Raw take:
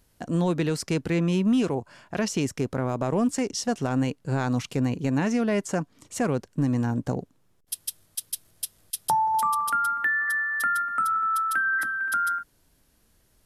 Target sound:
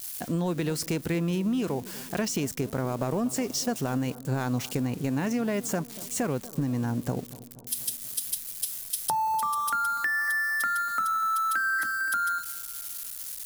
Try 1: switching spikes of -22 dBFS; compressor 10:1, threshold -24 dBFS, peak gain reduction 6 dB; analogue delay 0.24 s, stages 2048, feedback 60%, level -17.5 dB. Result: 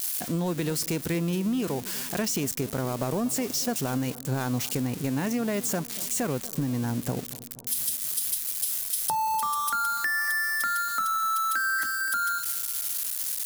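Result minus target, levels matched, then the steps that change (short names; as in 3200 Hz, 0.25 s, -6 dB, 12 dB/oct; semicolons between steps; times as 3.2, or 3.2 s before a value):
switching spikes: distortion +8 dB
change: switching spikes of -30.5 dBFS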